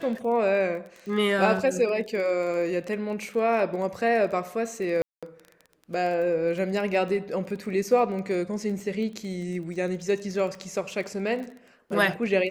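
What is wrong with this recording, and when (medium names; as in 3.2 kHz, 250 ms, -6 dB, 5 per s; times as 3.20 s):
crackle 19 per s -34 dBFS
5.02–5.23 s: dropout 206 ms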